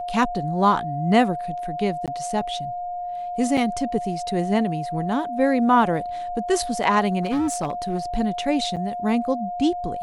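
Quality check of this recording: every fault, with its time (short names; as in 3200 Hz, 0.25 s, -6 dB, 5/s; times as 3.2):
tone 710 Hz -27 dBFS
2.06–2.08 gap 17 ms
3.57 gap 4.7 ms
7.22–7.99 clipped -19.5 dBFS
8.76–8.77 gap 7.6 ms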